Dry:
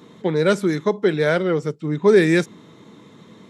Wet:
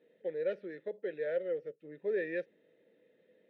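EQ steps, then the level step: boxcar filter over 6 samples; vowel filter e; -8.0 dB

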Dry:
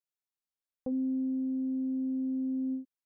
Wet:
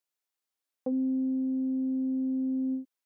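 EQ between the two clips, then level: high-pass 260 Hz; +5.5 dB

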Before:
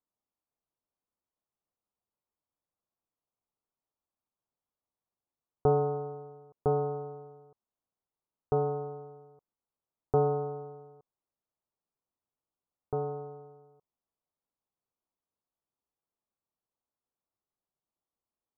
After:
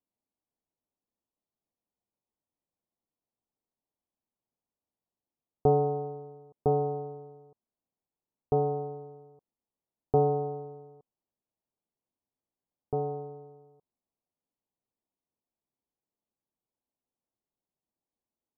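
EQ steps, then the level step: low-pass 1 kHz 24 dB/octave; peaking EQ 240 Hz +5 dB 1.1 oct; dynamic bell 700 Hz, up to +5 dB, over -48 dBFS, Q 6.3; 0.0 dB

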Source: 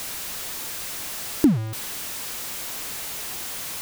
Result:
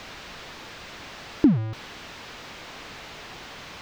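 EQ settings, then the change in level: distance through air 210 m; 0.0 dB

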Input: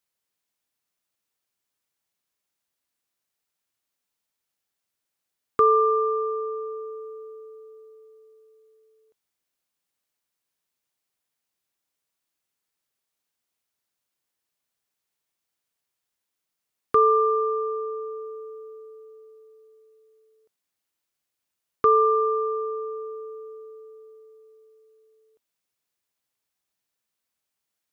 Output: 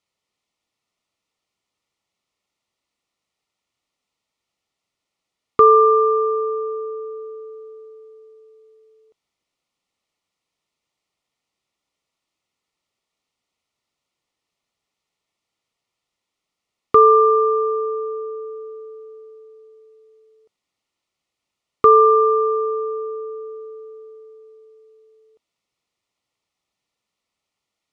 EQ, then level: Butterworth band-stop 1.6 kHz, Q 4.5; distance through air 83 m; +7.5 dB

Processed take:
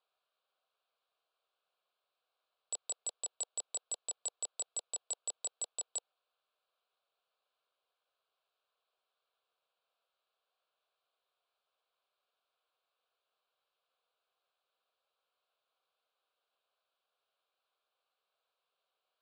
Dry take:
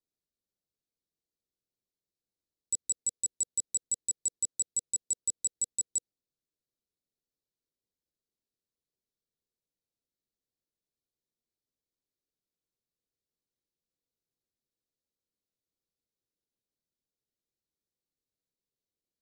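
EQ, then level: resonant high-pass 840 Hz, resonance Q 5.7; low-pass 3.8 kHz 12 dB/octave; static phaser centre 1.3 kHz, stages 8; +14.5 dB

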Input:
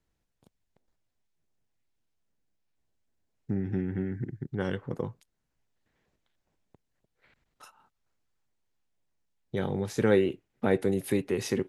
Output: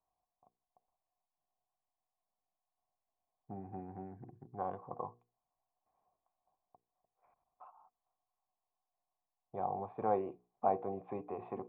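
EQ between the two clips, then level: cascade formant filter a; hum notches 60/120/180/240/300/360/420/480 Hz; +10.5 dB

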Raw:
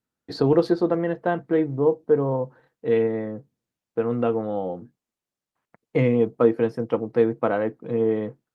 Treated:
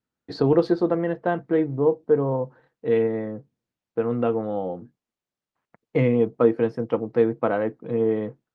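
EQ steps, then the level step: distance through air 65 m; 0.0 dB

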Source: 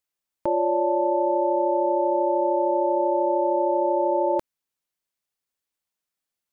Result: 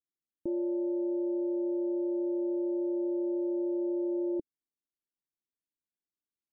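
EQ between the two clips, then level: four-pole ladder low-pass 380 Hz, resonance 50%; 0.0 dB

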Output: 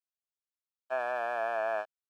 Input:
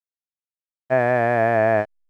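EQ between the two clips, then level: high-pass 1.4 kHz 12 dB/octave; Butterworth band-stop 2 kHz, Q 1.9; treble shelf 3 kHz -9.5 dB; 0.0 dB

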